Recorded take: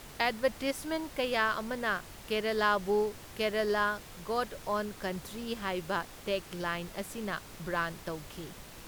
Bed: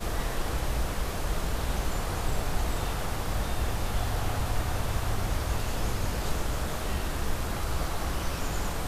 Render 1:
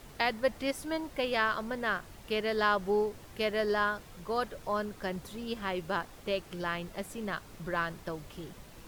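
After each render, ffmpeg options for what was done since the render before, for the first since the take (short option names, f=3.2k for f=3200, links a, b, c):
-af "afftdn=nr=6:nf=-49"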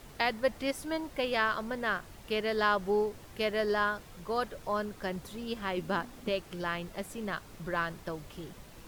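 -filter_complex "[0:a]asettb=1/sr,asplit=3[a][b][c];[a]atrim=end=5.774[d];[b]atrim=start=5.77:end=6.29,asetpts=PTS-STARTPTS,afade=t=in:d=0.004:c=qsin,afade=t=out:st=0.516:d=0.004:c=qsin,equalizer=f=240:w=2.8:g=12[e];[c]atrim=start=6.286[f];[d][e]acrossfade=d=0.004:c1=hsin:c2=qsin[g];[g][f]acrossfade=d=0.004:c1=qsin:c2=hsin"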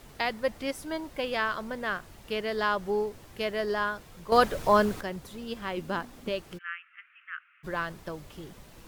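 -filter_complex "[0:a]asplit=3[a][b][c];[a]afade=t=out:st=6.57:d=0.02[d];[b]asuperpass=centerf=1900:order=12:qfactor=1.2,afade=t=in:st=6.57:d=0.02,afade=t=out:st=7.63:d=0.02[e];[c]afade=t=in:st=7.63:d=0.02[f];[d][e][f]amix=inputs=3:normalize=0,asplit=3[g][h][i];[g]atrim=end=4.322[j];[h]atrim=start=4.318:end=5.012,asetpts=PTS-STARTPTS,volume=11dB[k];[i]atrim=start=5.008[l];[j][k]acrossfade=d=0.004:c1=hsin:c2=hsin[m];[m][l]acrossfade=d=0.004:c1=hsin:c2=hsin"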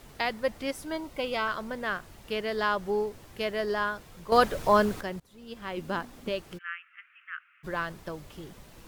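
-filter_complex "[0:a]asettb=1/sr,asplit=3[a][b][c];[a]atrim=end=0.954[d];[b]atrim=start=0.95:end=1.48,asetpts=PTS-STARTPTS,afade=t=in:d=0.004:c=qsin,afade=t=out:st=0.526:d=0.004:c=qsin,asuperstop=centerf=1700:order=12:qfactor=7.5[e];[c]atrim=start=1.476[f];[d][e]acrossfade=d=0.004:c1=hsin:c2=qsin[g];[g][f]acrossfade=d=0.004:c1=qsin:c2=hsin,asplit=2[h][i];[h]atrim=end=5.2,asetpts=PTS-STARTPTS,afade=t=out:st=5.196:d=0.004:c=hsin:silence=0.0668344[j];[i]atrim=start=5.2,asetpts=PTS-STARTPTS,afade=t=in:d=0.67:silence=0.0668344[k];[j][k]concat=n=2:v=0:a=1"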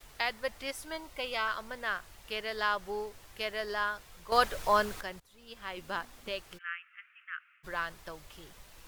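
-af "agate=range=-33dB:threshold=-56dB:ratio=3:detection=peak,equalizer=f=210:t=o:w=2.9:g=-13"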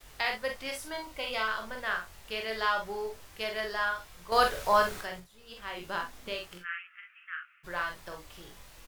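-filter_complex "[0:a]asplit=2[a][b];[b]adelay=23,volume=-8.5dB[c];[a][c]amix=inputs=2:normalize=0,asplit=2[d][e];[e]aecho=0:1:45|61:0.562|0.251[f];[d][f]amix=inputs=2:normalize=0"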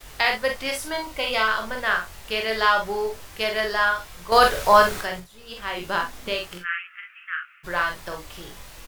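-af "volume=9.5dB,alimiter=limit=-3dB:level=0:latency=1"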